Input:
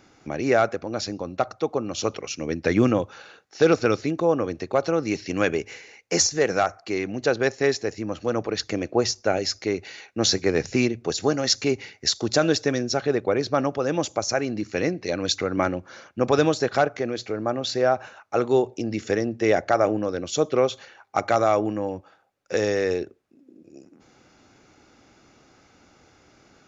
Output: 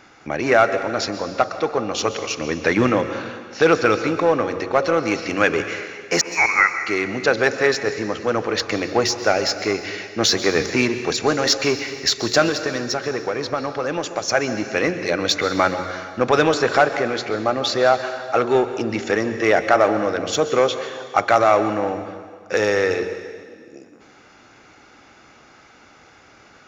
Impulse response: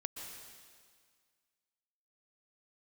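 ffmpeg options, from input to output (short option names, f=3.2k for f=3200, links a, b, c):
-filter_complex "[0:a]bandreject=f=91.04:t=h:w=4,bandreject=f=182.08:t=h:w=4,bandreject=f=273.12:t=h:w=4,bandreject=f=364.16:t=h:w=4,bandreject=f=455.2:t=h:w=4,bandreject=f=546.24:t=h:w=4,asplit=2[a][b];[b]asoftclip=type=hard:threshold=-23.5dB,volume=-5dB[c];[a][c]amix=inputs=2:normalize=0,equalizer=f=1.6k:t=o:w=2.8:g=9,asettb=1/sr,asplit=3[d][e][f];[d]atrim=end=6.214[g];[e]atrim=start=6.21:end=6.8,asetpts=PTS-STARTPTS,afade=t=in:d=0.004:c=qsin,afade=t=out:st=0.586:d=0.004:c=qsin,lowpass=f=2.3k:t=q:w=0.5098,lowpass=f=2.3k:t=q:w=0.6013,lowpass=f=2.3k:t=q:w=0.9,lowpass=f=2.3k:t=q:w=2.563,afreqshift=-2700[h];[f]atrim=start=6.796[i];[g][h]acrossfade=d=0.004:c1=hsin:c2=qsin[j];[j][i]acrossfade=d=0.004:c1=qsin:c2=hsin,asettb=1/sr,asplit=3[k][l][m];[k]atrim=end=12.484[n];[l]atrim=start=12.48:end=14.28,asetpts=PTS-STARTPTS,afade=t=in:d=0.004:c=qsin,afade=t=out:st=1.796:d=0.004:c=qsin,acompressor=threshold=-18dB:ratio=6[o];[m]atrim=start=14.276[p];[n][o]acrossfade=d=0.004:c1=hsin:c2=qsin[q];[q][p]acrossfade=d=0.004:c1=qsin:c2=hsin,asplit=2[r][s];[1:a]atrim=start_sample=2205[t];[s][t]afir=irnorm=-1:irlink=0,volume=0.5dB[u];[r][u]amix=inputs=2:normalize=0,volume=-7dB"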